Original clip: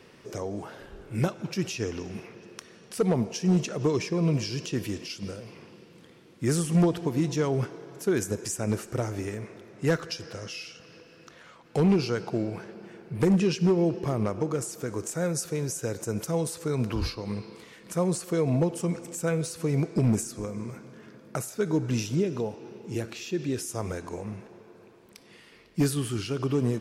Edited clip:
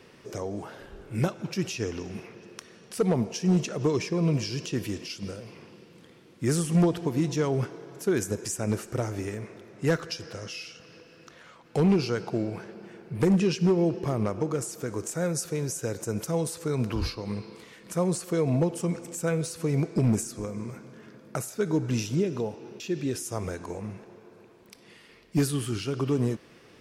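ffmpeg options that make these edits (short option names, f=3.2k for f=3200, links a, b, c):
-filter_complex "[0:a]asplit=2[a][b];[a]atrim=end=22.802[c];[b]atrim=start=23.228[d];[c][d]acrossfade=d=0.004:c1=hsin:c2=hsin"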